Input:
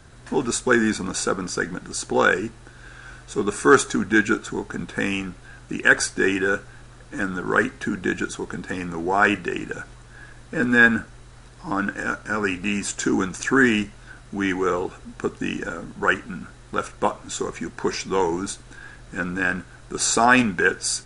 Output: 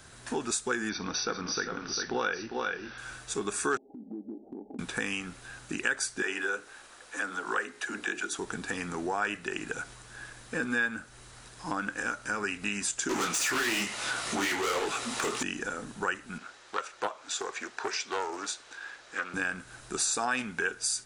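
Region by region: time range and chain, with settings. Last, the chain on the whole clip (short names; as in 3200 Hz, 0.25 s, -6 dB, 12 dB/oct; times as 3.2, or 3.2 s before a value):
0.89–2.98 brick-wall FIR low-pass 6100 Hz + tapped delay 58/400/429 ms -18/-7/-16.5 dB
3.77–4.79 rippled Chebyshev low-pass 840 Hz, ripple 6 dB + resonant low shelf 180 Hz -12 dB, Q 3 + compressor 5:1, threshold -33 dBFS
6.22–8.39 tone controls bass -15 dB, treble -2 dB + notches 60/120/180/240/300/360/420/480 Hz + dispersion lows, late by 40 ms, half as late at 330 Hz
13.09–15.43 notch 1600 Hz, Q 6.2 + overdrive pedal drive 32 dB, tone 5700 Hz, clips at -7 dBFS + detuned doubles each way 58 cents
16.38–19.34 three-band isolator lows -22 dB, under 360 Hz, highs -22 dB, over 7100 Hz + Doppler distortion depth 0.25 ms
whole clip: tilt +2 dB/oct; compressor 3:1, threshold -29 dBFS; gain -1.5 dB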